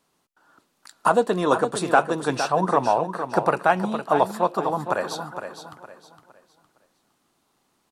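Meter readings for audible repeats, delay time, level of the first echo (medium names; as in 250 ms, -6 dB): 3, 461 ms, -9.0 dB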